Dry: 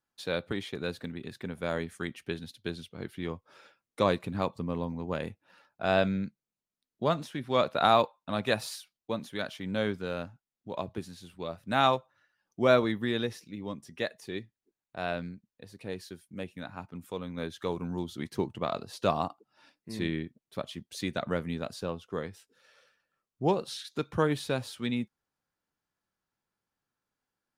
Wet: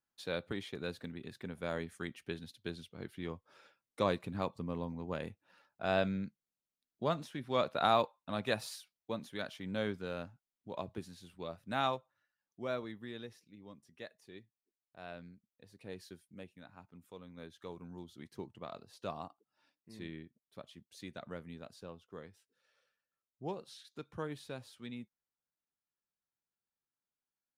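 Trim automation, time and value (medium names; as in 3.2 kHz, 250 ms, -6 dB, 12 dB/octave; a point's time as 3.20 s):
11.48 s -6 dB
12.67 s -15.5 dB
14.99 s -15.5 dB
16.13 s -7 dB
16.59 s -14 dB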